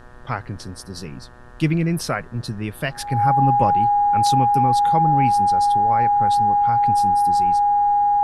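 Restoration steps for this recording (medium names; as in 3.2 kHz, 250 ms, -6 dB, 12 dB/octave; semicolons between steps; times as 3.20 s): de-hum 122.2 Hz, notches 15; band-stop 820 Hz, Q 30; expander -31 dBFS, range -21 dB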